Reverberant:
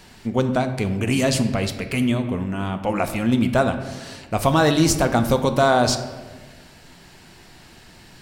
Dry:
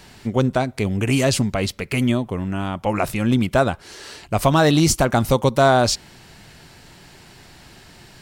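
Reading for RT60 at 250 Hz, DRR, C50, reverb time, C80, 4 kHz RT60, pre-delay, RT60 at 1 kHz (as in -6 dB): 1.9 s, 7.0 dB, 9.5 dB, 1.4 s, 11.5 dB, 0.85 s, 3 ms, 1.3 s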